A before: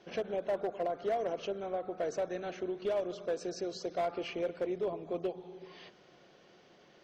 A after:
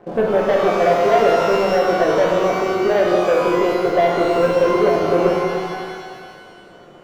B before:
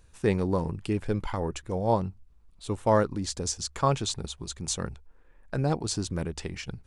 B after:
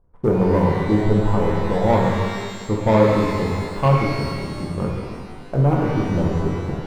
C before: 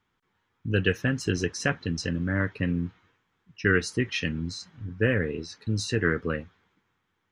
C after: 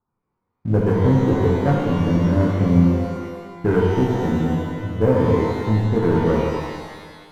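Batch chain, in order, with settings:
inverse Chebyshev low-pass filter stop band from 2,200 Hz, stop band 40 dB
mains-hum notches 60/120/180/240/300/360/420/480 Hz
leveller curve on the samples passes 2
reverb with rising layers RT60 1.6 s, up +12 semitones, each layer −8 dB, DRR −2 dB
normalise the peak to −3 dBFS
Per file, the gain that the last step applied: +11.0, +0.5, +1.0 decibels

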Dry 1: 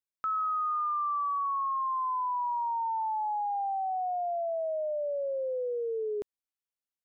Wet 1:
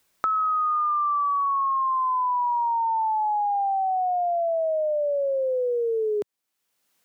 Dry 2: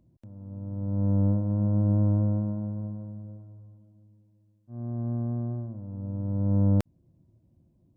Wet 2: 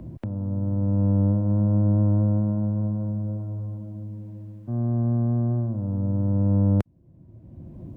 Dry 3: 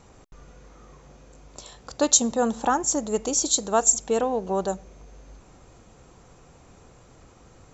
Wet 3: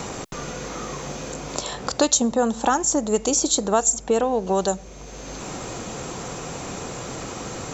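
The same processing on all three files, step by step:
multiband upward and downward compressor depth 70%
loudness normalisation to −24 LKFS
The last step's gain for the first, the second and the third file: +7.0, +4.5, +4.5 decibels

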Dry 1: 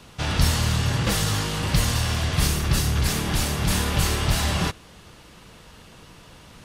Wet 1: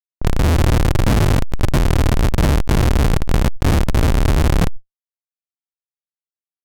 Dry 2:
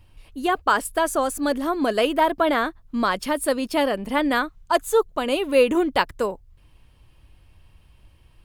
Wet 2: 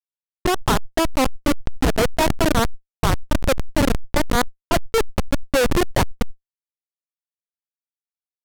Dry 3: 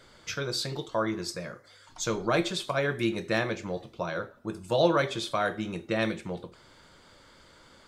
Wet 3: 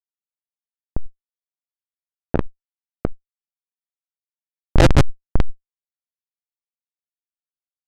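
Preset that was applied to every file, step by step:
comparator with hysteresis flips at −16.5 dBFS
low-pass that shuts in the quiet parts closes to 760 Hz, open at −27 dBFS
level that may fall only so fast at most 27 dB per second
normalise the peak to −3 dBFS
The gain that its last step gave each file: +11.0, +7.5, +22.0 decibels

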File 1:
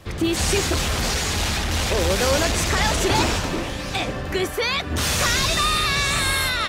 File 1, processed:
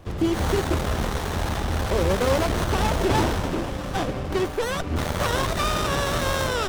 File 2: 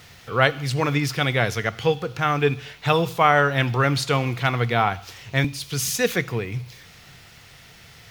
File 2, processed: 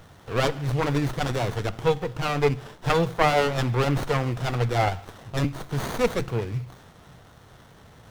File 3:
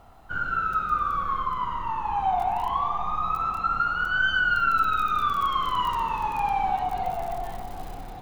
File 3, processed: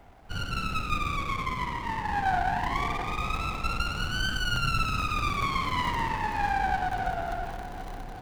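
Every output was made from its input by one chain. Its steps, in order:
windowed peak hold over 17 samples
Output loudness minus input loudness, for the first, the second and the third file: −3.5, −3.5, −4.0 LU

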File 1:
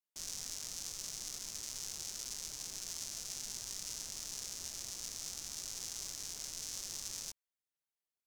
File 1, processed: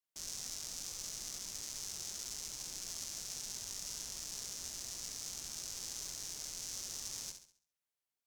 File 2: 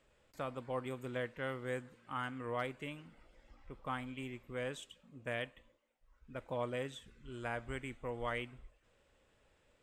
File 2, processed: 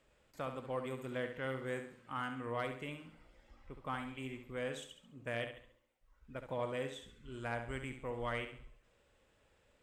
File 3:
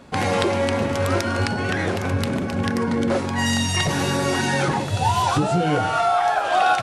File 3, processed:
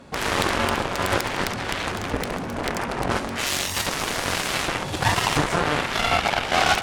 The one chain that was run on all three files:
flutter between parallel walls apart 11.7 metres, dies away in 0.48 s
harmonic generator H 7 −10 dB, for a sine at −6.5 dBFS
level −2 dB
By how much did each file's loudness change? −0.5, 0.0, −2.5 LU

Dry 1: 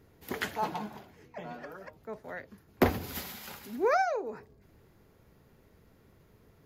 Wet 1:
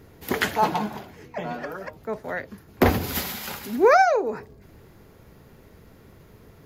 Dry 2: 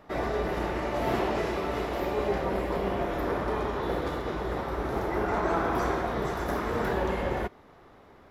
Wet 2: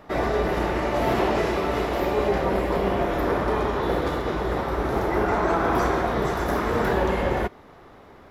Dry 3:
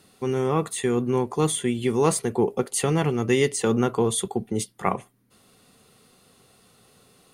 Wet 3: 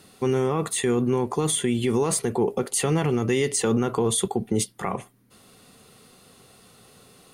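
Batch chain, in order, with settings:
brickwall limiter −18 dBFS
loudness normalisation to −24 LKFS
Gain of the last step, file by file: +11.0, +6.0, +4.5 decibels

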